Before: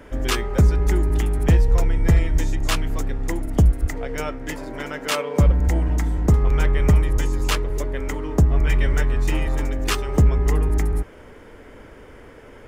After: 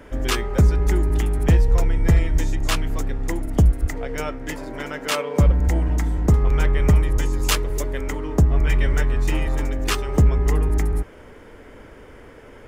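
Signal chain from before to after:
0:07.43–0:08.01: high-shelf EQ 4,700 Hz +8.5 dB

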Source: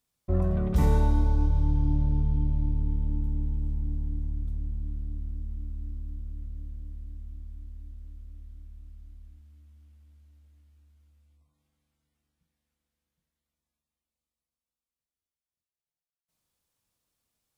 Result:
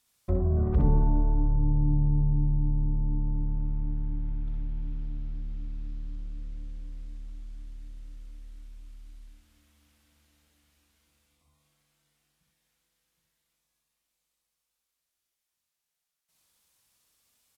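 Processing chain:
treble cut that deepens with the level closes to 550 Hz, closed at −20.5 dBFS
multi-tap delay 53/62/77/115/237 ms −18/−3/−16.5/−18.5/−16.5 dB
one half of a high-frequency compander encoder only

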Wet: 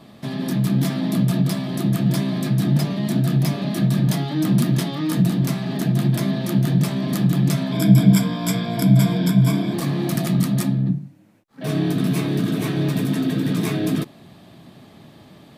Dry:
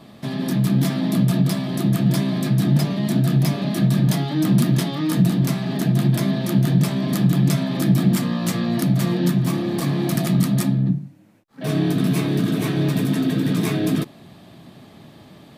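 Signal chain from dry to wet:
0:07.72–0:09.74: EQ curve with evenly spaced ripples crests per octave 1.7, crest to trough 15 dB
level −1 dB

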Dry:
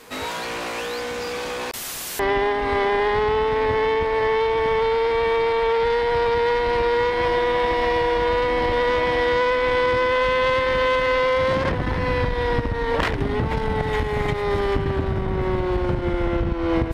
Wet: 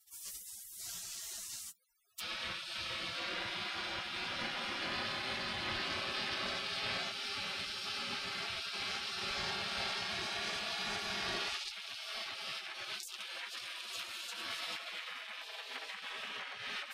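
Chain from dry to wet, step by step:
0:15.40–0:15.91: flat-topped bell 600 Hz −8.5 dB
gate on every frequency bin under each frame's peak −30 dB weak
notch comb filter 150 Hz
level +2.5 dB

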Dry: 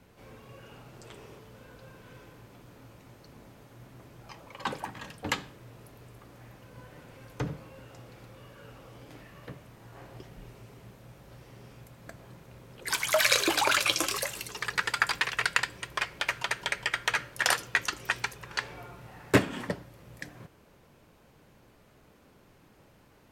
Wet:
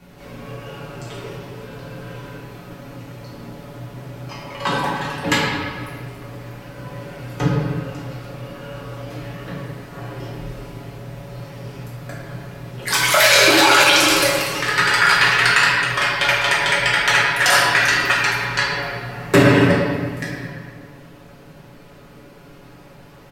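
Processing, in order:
comb filter 7.1 ms, depth 44%
convolution reverb RT60 1.7 s, pre-delay 5 ms, DRR −7 dB
boost into a limiter +7.5 dB
level −1 dB

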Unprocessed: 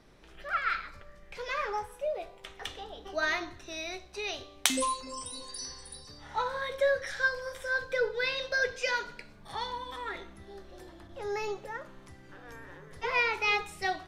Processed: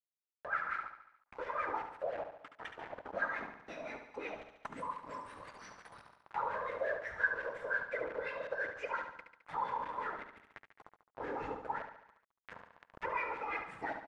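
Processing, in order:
noise reduction from a noise print of the clip's start 28 dB
noise gate with hold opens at −44 dBFS
high shelf with overshoot 5,700 Hz +10 dB, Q 1.5
downward compressor 4 to 1, threshold −34 dBFS, peak gain reduction 18 dB
random phases in short frames
notch comb filter 370 Hz
bit reduction 7 bits
auto-filter low-pass sine 5.7 Hz 920–1,900 Hz
repeating echo 71 ms, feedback 48%, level −8 dB
one half of a high-frequency compander encoder only
level −3.5 dB

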